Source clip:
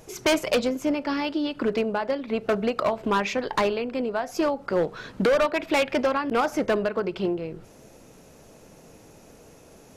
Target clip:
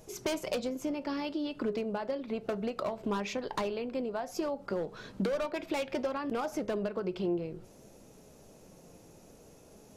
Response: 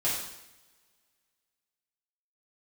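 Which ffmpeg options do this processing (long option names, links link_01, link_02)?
-af "equalizer=frequency=1800:width_type=o:width=1.8:gain=-5.5,acompressor=threshold=-25dB:ratio=6,flanger=delay=4.7:depth=1.1:regen=83:speed=0.61:shape=triangular"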